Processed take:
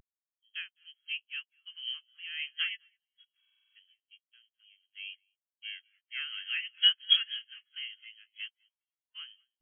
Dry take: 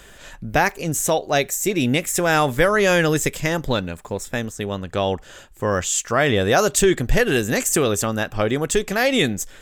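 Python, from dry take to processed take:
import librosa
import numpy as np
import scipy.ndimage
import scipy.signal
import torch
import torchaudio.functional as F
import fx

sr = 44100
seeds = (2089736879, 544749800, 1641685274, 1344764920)

p1 = fx.spec_flatten(x, sr, power=0.2)
p2 = fx.freq_invert(p1, sr, carrier_hz=3300)
p3 = scipy.signal.sosfilt(scipy.signal.butter(2, 1400.0, 'highpass', fs=sr, output='sos'), p2)
p4 = 10.0 ** (-24.5 / 20.0) * np.tanh(p3 / 10.0 ** (-24.5 / 20.0))
p5 = p3 + F.gain(torch.from_numpy(p4), -4.0).numpy()
p6 = fx.over_compress(p5, sr, threshold_db=-33.0, ratio=-1.0, at=(2.75, 3.4), fade=0.02)
p7 = fx.overflow_wrap(p6, sr, gain_db=26.0, at=(8.49, 9.15))
p8 = p7 + fx.echo_feedback(p7, sr, ms=208, feedback_pct=30, wet_db=-9.0, dry=0)
p9 = fx.buffer_glitch(p8, sr, at_s=(3.39,), block=2048, repeats=7)
p10 = fx.spectral_expand(p9, sr, expansion=4.0)
y = F.gain(torch.from_numpy(p10), -5.0).numpy()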